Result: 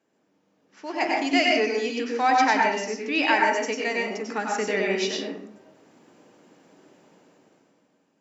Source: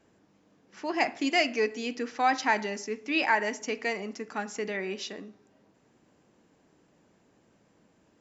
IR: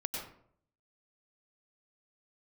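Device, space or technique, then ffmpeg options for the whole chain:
far laptop microphone: -filter_complex "[1:a]atrim=start_sample=2205[link_01];[0:a][link_01]afir=irnorm=-1:irlink=0,highpass=200,dynaudnorm=framelen=140:gausssize=13:maxgain=14dB,volume=-6dB"

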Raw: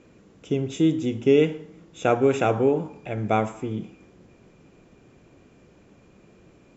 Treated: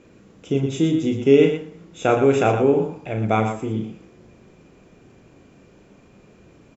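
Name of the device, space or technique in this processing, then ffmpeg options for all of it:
slapback doubling: -filter_complex "[0:a]asplit=3[link_01][link_02][link_03];[link_02]adelay=36,volume=-6dB[link_04];[link_03]adelay=118,volume=-8dB[link_05];[link_01][link_04][link_05]amix=inputs=3:normalize=0,volume=2dB"

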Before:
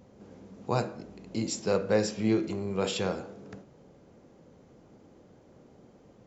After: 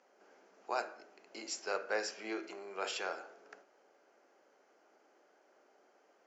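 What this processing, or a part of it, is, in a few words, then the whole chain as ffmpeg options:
phone speaker on a table: -af "highpass=frequency=460:width=0.5412,highpass=frequency=460:width=1.3066,equalizer=frequency=500:width_type=q:width=4:gain=-10,equalizer=frequency=1000:width_type=q:width=4:gain=-4,equalizer=frequency=1500:width_type=q:width=4:gain=5,equalizer=frequency=3700:width_type=q:width=4:gain=-9,lowpass=frequency=6600:width=0.5412,lowpass=frequency=6600:width=1.3066,volume=-2.5dB"

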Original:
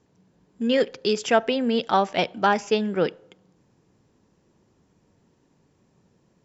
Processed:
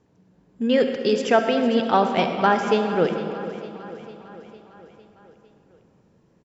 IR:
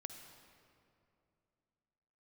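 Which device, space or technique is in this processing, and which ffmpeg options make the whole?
swimming-pool hall: -filter_complex "[1:a]atrim=start_sample=2205[link_01];[0:a][link_01]afir=irnorm=-1:irlink=0,highshelf=frequency=3400:gain=-7.5,aecho=1:1:454|908|1362|1816|2270|2724:0.168|0.101|0.0604|0.0363|0.0218|0.0131,volume=6.5dB"

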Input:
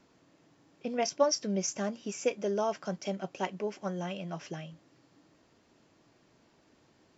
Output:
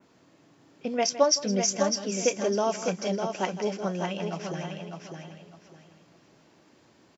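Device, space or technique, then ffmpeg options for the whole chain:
ducked delay: -filter_complex "[0:a]highpass=79,asplit=3[link_01][link_02][link_03];[link_02]adelay=162,volume=-7.5dB[link_04];[link_03]apad=whole_len=323411[link_05];[link_04][link_05]sidechaincompress=threshold=-36dB:ratio=8:attack=16:release=390[link_06];[link_01][link_06]amix=inputs=2:normalize=0,adynamicequalizer=threshold=0.00398:dfrequency=4900:dqfactor=0.95:tfrequency=4900:tqfactor=0.95:attack=5:release=100:ratio=0.375:range=2:mode=boostabove:tftype=bell,aecho=1:1:603|1206|1809:0.501|0.125|0.0313,volume=4dB"

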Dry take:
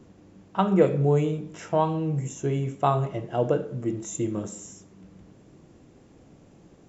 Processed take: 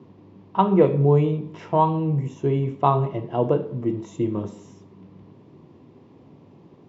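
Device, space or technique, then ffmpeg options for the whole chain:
guitar cabinet: -af "highpass=98,equalizer=frequency=99:width_type=q:width=4:gain=8,equalizer=frequency=150:width_type=q:width=4:gain=5,equalizer=frequency=250:width_type=q:width=4:gain=5,equalizer=frequency=390:width_type=q:width=4:gain=6,equalizer=frequency=990:width_type=q:width=4:gain=10,equalizer=frequency=1500:width_type=q:width=4:gain=-6,lowpass=frequency=4500:width=0.5412,lowpass=frequency=4500:width=1.3066"

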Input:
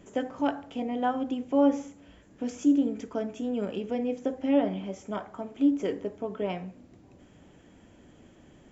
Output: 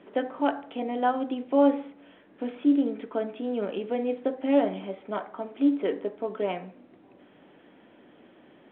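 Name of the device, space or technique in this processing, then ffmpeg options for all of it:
telephone: -af "highpass=280,lowpass=3400,volume=3.5dB" -ar 8000 -c:a pcm_mulaw

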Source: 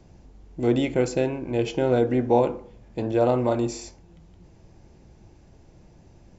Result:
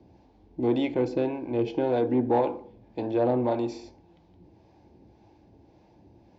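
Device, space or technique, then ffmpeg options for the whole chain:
guitar amplifier with harmonic tremolo: -filter_complex "[0:a]acrossover=split=530[link_01][link_02];[link_01]aeval=exprs='val(0)*(1-0.5/2+0.5/2*cos(2*PI*1.8*n/s))':channel_layout=same[link_03];[link_02]aeval=exprs='val(0)*(1-0.5/2-0.5/2*cos(2*PI*1.8*n/s))':channel_layout=same[link_04];[link_03][link_04]amix=inputs=2:normalize=0,asoftclip=type=tanh:threshold=-16.5dB,highpass=90,equalizer=frequency=150:width_type=q:width=4:gain=-8,equalizer=frequency=300:width_type=q:width=4:gain=6,equalizer=frequency=850:width_type=q:width=4:gain=6,equalizer=frequency=1300:width_type=q:width=4:gain=-9,equalizer=frequency=1900:width_type=q:width=4:gain=-4,equalizer=frequency=2900:width_type=q:width=4:gain=-4,lowpass=frequency=4500:width=0.5412,lowpass=frequency=4500:width=1.3066"

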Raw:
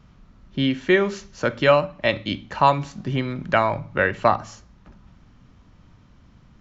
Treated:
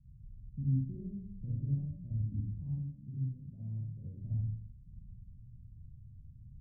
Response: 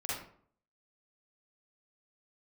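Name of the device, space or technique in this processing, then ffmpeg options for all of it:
club heard from the street: -filter_complex "[0:a]asettb=1/sr,asplit=3[link_01][link_02][link_03];[link_01]atrim=end=2.704[link_04];[link_02]atrim=start=2.7:end=4.16,asetpts=PTS-STARTPTS,afade=type=in:duration=0.004:curve=qsin,afade=type=out:start_time=1.456:duration=0.004:curve=qsin,aemphasis=mode=production:type=bsi[link_05];[link_03]atrim=start=4.156[link_06];[link_04][link_05]acrossfade=duration=0.004:curve1=hsin:curve2=qsin[link_07];[link_07][link_06]acrossfade=duration=0.004:curve1=qsin:curve2=hsin,alimiter=limit=-9dB:level=0:latency=1:release=65,lowpass=frequency=150:width=0.5412,lowpass=frequency=150:width=1.3066[link_08];[1:a]atrim=start_sample=2205[link_09];[link_08][link_09]afir=irnorm=-1:irlink=0,volume=-2.5dB"

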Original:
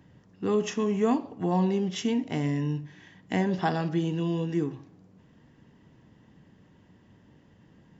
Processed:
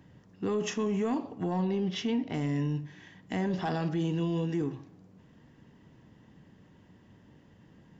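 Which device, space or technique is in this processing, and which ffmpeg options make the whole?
soft clipper into limiter: -filter_complex "[0:a]asoftclip=type=tanh:threshold=-16dB,alimiter=limit=-23.5dB:level=0:latency=1:release=14,asettb=1/sr,asplit=3[link_01][link_02][link_03];[link_01]atrim=end=1.624[link_04];[link_02]atrim=start=1.62:end=2.34,asetpts=PTS-STARTPTS,afade=type=in:duration=0.004:curve=qsin,afade=type=out:start_time=0.716:duration=0.004:curve=qsin,lowpass=frequency=5200:width=0.5412,lowpass=frequency=5200:width=1.3066[link_05];[link_03]atrim=start=2.336[link_06];[link_04][link_05]acrossfade=duration=0.004:curve1=hsin:curve2=qsin[link_07];[link_07][link_06]acrossfade=duration=0.004:curve1=qsin:curve2=hsin"

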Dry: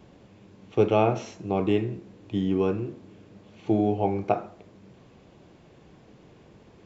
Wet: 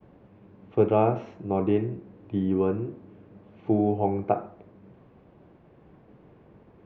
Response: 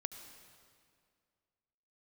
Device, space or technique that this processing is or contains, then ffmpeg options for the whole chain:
hearing-loss simulation: -af "lowpass=1700,agate=range=-33dB:threshold=-51dB:ratio=3:detection=peak"

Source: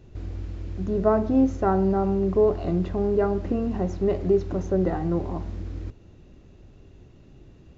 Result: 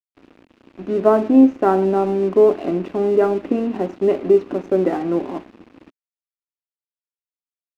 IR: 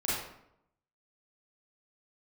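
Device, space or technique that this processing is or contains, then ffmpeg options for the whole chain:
pocket radio on a weak battery: -af "highpass=380,lowpass=3000,aeval=exprs='sgn(val(0))*max(abs(val(0))-0.00501,0)':channel_layout=same,equalizer=frequency=260:width_type=o:width=0.98:gain=11,equalizer=frequency=2600:width_type=o:width=0.39:gain=5,volume=6dB"

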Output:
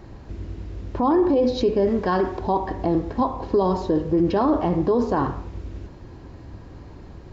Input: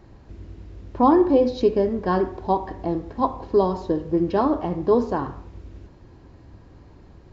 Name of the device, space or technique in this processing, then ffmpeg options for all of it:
stacked limiters: -filter_complex "[0:a]alimiter=limit=-12dB:level=0:latency=1:release=286,alimiter=limit=-18.5dB:level=0:latency=1:release=15,asettb=1/sr,asplit=3[link_01][link_02][link_03];[link_01]atrim=end=1.874[link_04];[link_02]atrim=start=1.87:end=2.39,asetpts=PTS-STARTPTS,afade=type=in:duration=0.004:curve=qsin,afade=type=out:start_time=0.516:duration=0.004:curve=qsin,tiltshelf=frequency=730:gain=-3[link_05];[link_03]atrim=start=2.386[link_06];[link_04][link_05]acrossfade=duration=0.004:curve1=hsin:curve2=qsin[link_07];[link_07][link_06]acrossfade=duration=0.004:curve1=qsin:curve2=hsin,volume=6.5dB"

